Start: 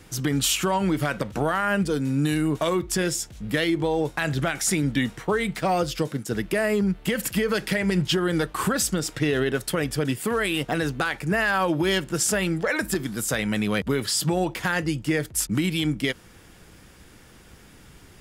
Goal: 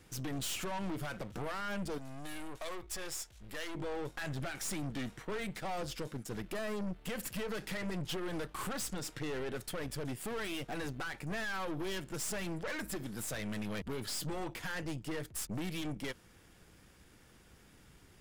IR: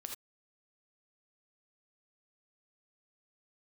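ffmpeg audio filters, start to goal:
-filter_complex "[0:a]aeval=exprs='(tanh(25.1*val(0)+0.65)-tanh(0.65))/25.1':channel_layout=same,asettb=1/sr,asplit=3[link_01][link_02][link_03];[link_01]atrim=end=1.984[link_04];[link_02]atrim=start=1.98:end=3.75,asetpts=PTS-STARTPTS,afade=type=in:duration=0.004:curve=qsin,afade=type=out:start_time=1.766:duration=0.004:curve=qsin,equalizer=frequency=190:width_type=o:width=2.2:gain=-12.5[link_05];[link_03]atrim=start=3.746[link_06];[link_04][link_05]acrossfade=duration=0.004:curve1=hsin:curve2=qsin[link_07];[link_07][link_06]acrossfade=duration=0.004:curve1=qsin:curve2=hsin,volume=-7.5dB"

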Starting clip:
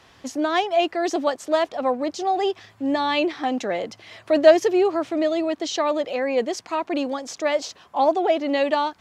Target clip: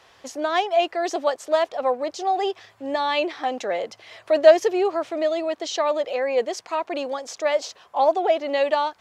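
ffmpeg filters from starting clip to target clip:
ffmpeg -i in.wav -af "lowshelf=frequency=360:width_type=q:width=1.5:gain=-7,volume=-1dB" out.wav

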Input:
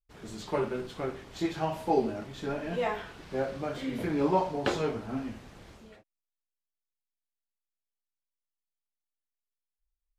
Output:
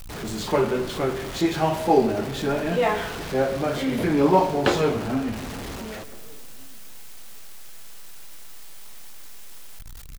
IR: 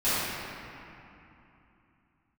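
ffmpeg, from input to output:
-filter_complex "[0:a]aeval=exprs='val(0)+0.5*0.0112*sgn(val(0))':channel_layout=same,asplit=2[link_01][link_02];[link_02]adelay=1458,volume=-29dB,highshelf=frequency=4000:gain=-32.8[link_03];[link_01][link_03]amix=inputs=2:normalize=0,asplit=2[link_04][link_05];[1:a]atrim=start_sample=2205,asetrate=79380,aresample=44100,adelay=103[link_06];[link_05][link_06]afir=irnorm=-1:irlink=0,volume=-24.5dB[link_07];[link_04][link_07]amix=inputs=2:normalize=0,volume=7.5dB"

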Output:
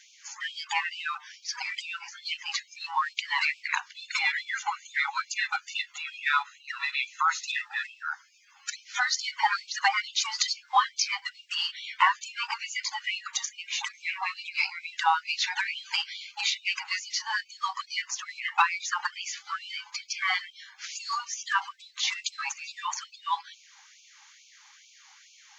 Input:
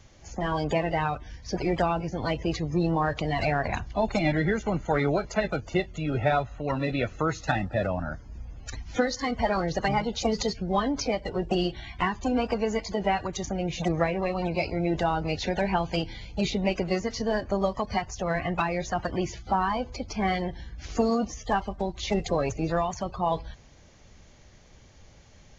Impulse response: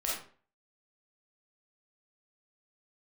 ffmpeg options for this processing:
-af "afftfilt=real='re*gte(b*sr/1024,760*pow(2300/760,0.5+0.5*sin(2*PI*2.3*pts/sr)))':imag='im*gte(b*sr/1024,760*pow(2300/760,0.5+0.5*sin(2*PI*2.3*pts/sr)))':win_size=1024:overlap=0.75,volume=7dB"

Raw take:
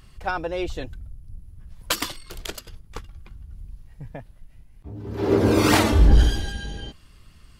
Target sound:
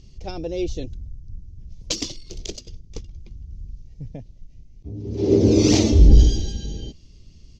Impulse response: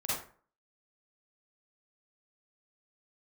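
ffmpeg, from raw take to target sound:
-af "firequalizer=gain_entry='entry(380,0);entry(950,-19);entry(1500,-25);entry(2200,-11);entry(6200,5);entry(9300,-28)':delay=0.05:min_phase=1,volume=3.5dB"

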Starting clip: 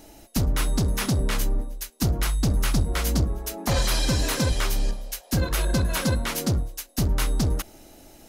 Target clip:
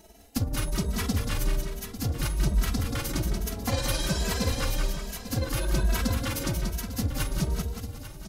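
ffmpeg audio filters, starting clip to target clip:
ffmpeg -i in.wav -filter_complex "[0:a]asplit=2[link_01][link_02];[link_02]aecho=0:1:849:0.211[link_03];[link_01][link_03]amix=inputs=2:normalize=0,tremolo=f=19:d=0.52,asplit=2[link_04][link_05];[link_05]aecho=0:1:182|364|546|728|910|1092|1274:0.531|0.276|0.144|0.0746|0.0388|0.0202|0.0105[link_06];[link_04][link_06]amix=inputs=2:normalize=0,asplit=2[link_07][link_08];[link_08]adelay=2.7,afreqshift=1.2[link_09];[link_07][link_09]amix=inputs=2:normalize=1" out.wav

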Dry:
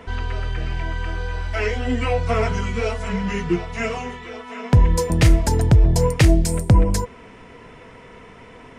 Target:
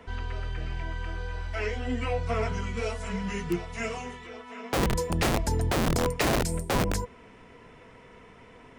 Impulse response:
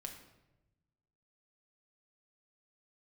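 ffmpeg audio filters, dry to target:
-filter_complex "[0:a]asettb=1/sr,asplit=3[link_01][link_02][link_03];[link_01]atrim=end=2.774[link_04];[link_02]atrim=start=2.77:end=4.27,asetpts=PTS-STARTPTS,afade=type=in:duration=0.004:curve=qsin,afade=type=out:start_time=1.496:duration=0.004:curve=qsin,highshelf=frequency=7600:gain=11.5[link_05];[link_03]atrim=start=4.266[link_06];[link_04][link_05]acrossfade=duration=0.004:curve1=hsin:curve2=qsin[link_07];[link_07][link_06]acrossfade=duration=0.004:curve1=qsin:curve2=hsin,acrossover=split=400|2000[link_08][link_09][link_10];[link_08]aeval=exprs='(mod(3.98*val(0)+1,2)-1)/3.98':channel_layout=same[link_11];[link_11][link_09][link_10]amix=inputs=3:normalize=0,volume=-8dB"

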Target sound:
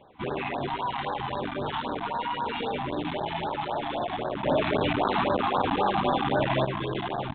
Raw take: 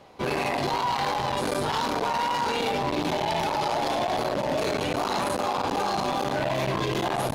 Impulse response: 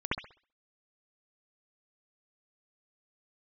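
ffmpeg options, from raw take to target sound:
-filter_complex "[0:a]asettb=1/sr,asplit=3[link_01][link_02][link_03];[link_01]atrim=end=4.434[link_04];[link_02]atrim=start=4.43:end=6.65,asetpts=PTS-STARTPTS,afade=type=in:duration=0.004:curve=qsin,afade=type=out:start_time=2.216:duration=0.004:curve=qsin,acontrast=57[link_05];[link_03]atrim=start=6.646[link_06];[link_04][link_05]acrossfade=duration=0.004:curve1=hsin:curve2=qsin[link_07];[link_07][link_06]acrossfade=duration=0.004:curve1=qsin:curve2=hsin,aresample=8000,aresample=44100,afftfilt=real='re*(1-between(b*sr/1024,430*pow(2600/430,0.5+0.5*sin(2*PI*3.8*pts/sr))/1.41,430*pow(2600/430,0.5+0.5*sin(2*PI*3.8*pts/sr))*1.41))':imag='im*(1-between(b*sr/1024,430*pow(2600/430,0.5+0.5*sin(2*PI*3.8*pts/sr))/1.41,430*pow(2600/430,0.5+0.5*sin(2*PI*3.8*pts/sr))*1.41))':win_size=1024:overlap=0.75,volume=-3dB"

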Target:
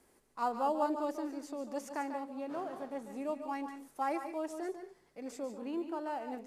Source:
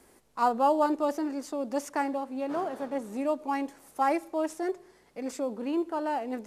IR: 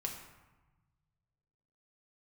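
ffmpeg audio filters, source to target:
-filter_complex "[0:a]asplit=2[link_01][link_02];[1:a]atrim=start_sample=2205,atrim=end_sample=3528,adelay=144[link_03];[link_02][link_03]afir=irnorm=-1:irlink=0,volume=-7.5dB[link_04];[link_01][link_04]amix=inputs=2:normalize=0,volume=-8.5dB"

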